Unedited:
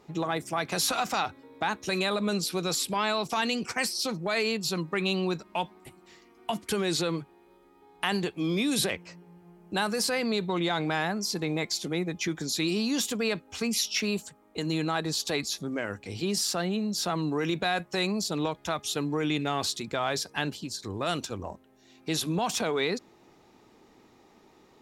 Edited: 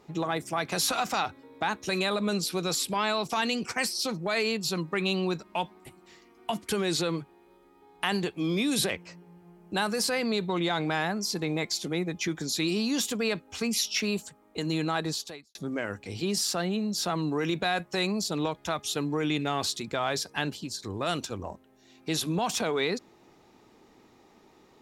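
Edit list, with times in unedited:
15.09–15.55 s: fade out quadratic

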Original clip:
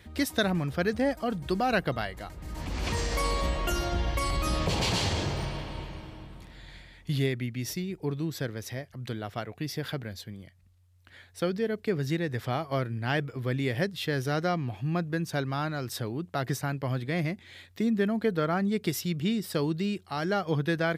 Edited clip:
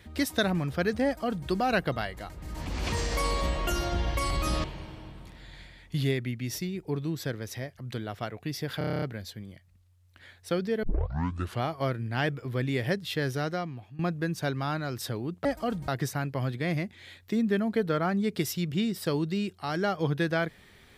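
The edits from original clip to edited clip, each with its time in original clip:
1.05–1.48 s: copy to 16.36 s
4.64–5.79 s: delete
9.93 s: stutter 0.03 s, 9 plays
11.74 s: tape start 0.79 s
14.17–14.90 s: fade out, to -18.5 dB

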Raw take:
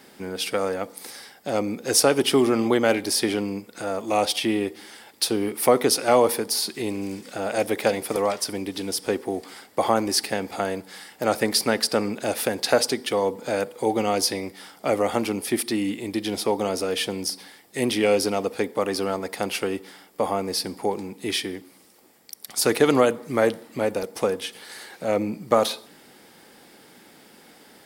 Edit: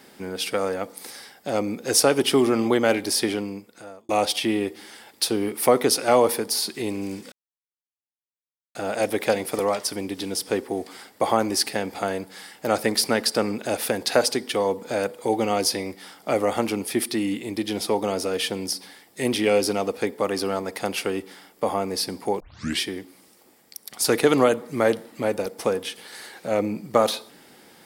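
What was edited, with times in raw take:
3.21–4.09 s: fade out
7.32 s: insert silence 1.43 s
20.97 s: tape start 0.40 s

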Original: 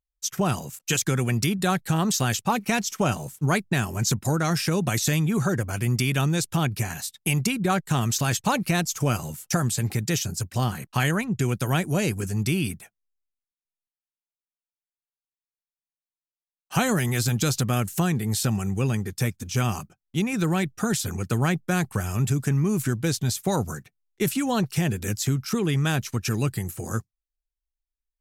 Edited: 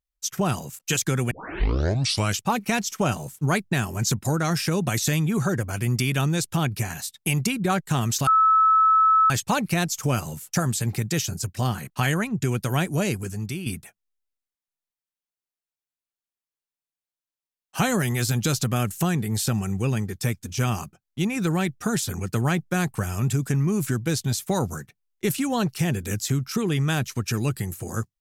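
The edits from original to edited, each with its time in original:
1.31 s: tape start 1.10 s
8.27 s: add tone 1.3 kHz -14 dBFS 1.03 s
12.00–12.63 s: fade out, to -10 dB

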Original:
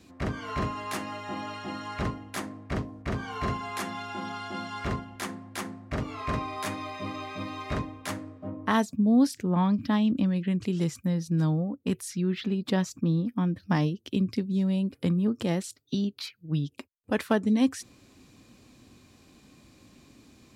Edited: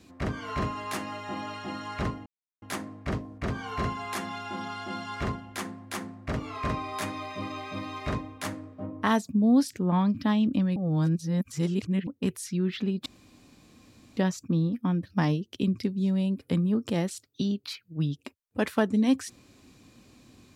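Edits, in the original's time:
2.26 s: insert silence 0.36 s
10.40–11.71 s: reverse
12.70 s: insert room tone 1.11 s

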